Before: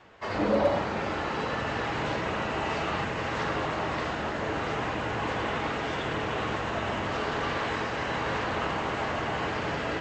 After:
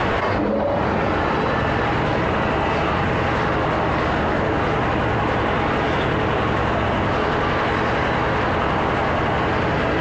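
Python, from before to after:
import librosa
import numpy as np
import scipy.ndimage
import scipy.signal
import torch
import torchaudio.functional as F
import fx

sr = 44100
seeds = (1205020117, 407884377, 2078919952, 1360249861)

y = fx.lowpass(x, sr, hz=2400.0, slope=6)
y = fx.low_shelf(y, sr, hz=130.0, db=4.5)
y = fx.env_flatten(y, sr, amount_pct=100)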